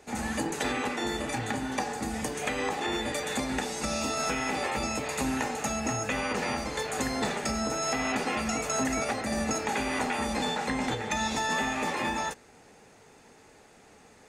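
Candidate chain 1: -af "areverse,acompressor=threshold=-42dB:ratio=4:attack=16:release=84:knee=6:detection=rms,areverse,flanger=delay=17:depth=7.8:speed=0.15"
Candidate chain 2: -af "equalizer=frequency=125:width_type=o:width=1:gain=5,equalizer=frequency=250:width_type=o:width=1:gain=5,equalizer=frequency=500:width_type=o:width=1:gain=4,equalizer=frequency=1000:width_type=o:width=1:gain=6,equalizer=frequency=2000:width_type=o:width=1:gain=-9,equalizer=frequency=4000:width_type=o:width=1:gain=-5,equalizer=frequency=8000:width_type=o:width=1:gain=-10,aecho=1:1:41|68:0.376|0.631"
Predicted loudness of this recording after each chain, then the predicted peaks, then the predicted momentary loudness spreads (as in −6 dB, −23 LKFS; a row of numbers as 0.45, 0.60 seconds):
−44.0, −24.0 LKFS; −31.0, −10.5 dBFS; 15, 3 LU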